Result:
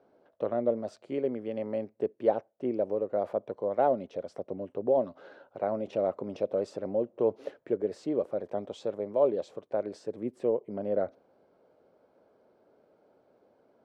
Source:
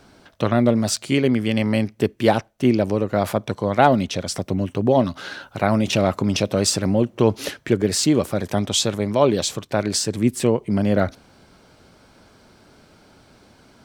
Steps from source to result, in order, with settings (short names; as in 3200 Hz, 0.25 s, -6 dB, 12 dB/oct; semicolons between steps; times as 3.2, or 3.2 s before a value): band-pass 520 Hz, Q 2.4; gain -5 dB